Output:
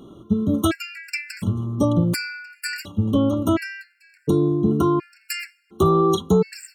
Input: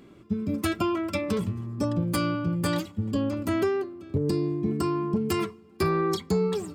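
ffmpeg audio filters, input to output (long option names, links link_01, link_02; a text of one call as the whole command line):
ffmpeg -i in.wav -filter_complex "[0:a]asettb=1/sr,asplit=3[link_01][link_02][link_03];[link_01]atrim=end=2.684[link_04];[link_02]atrim=start=2.68:end=3.64,asetpts=PTS-STARTPTS,afade=type=in:duration=0.004:curve=qsin,afade=type=out:start_time=0.956:duration=0.004:curve=qsin,aeval=exprs='val(0)+0.00178*sin(2*PI*2800*n/s)':channel_layout=same[link_05];[link_03]atrim=start=3.636[link_06];[link_04][link_05]acrossfade=duration=0.004:curve1=hsin:curve2=qsin[link_07];[link_07][link_06]acrossfade=duration=0.004:curve1=qsin:curve2=hsin,afftfilt=real='re*gt(sin(2*PI*0.7*pts/sr)*(1-2*mod(floor(b*sr/1024/1400),2)),0)':imag='im*gt(sin(2*PI*0.7*pts/sr)*(1-2*mod(floor(b*sr/1024/1400),2)),0)':win_size=1024:overlap=0.75,volume=8dB" out.wav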